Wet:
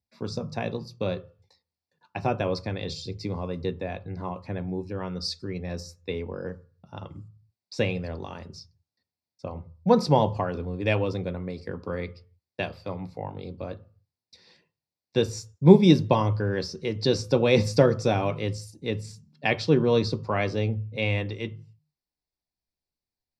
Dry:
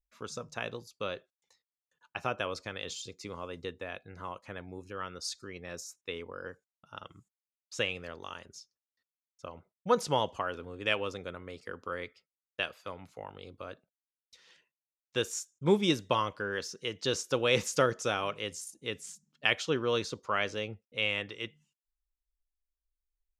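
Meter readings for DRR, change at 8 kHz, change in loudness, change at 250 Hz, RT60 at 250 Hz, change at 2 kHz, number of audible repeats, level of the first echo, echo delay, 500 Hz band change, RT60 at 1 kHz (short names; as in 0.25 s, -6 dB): 9.5 dB, -3.0 dB, +7.5 dB, +12.5 dB, 0.40 s, +0.5 dB, none, none, none, +8.0 dB, 0.40 s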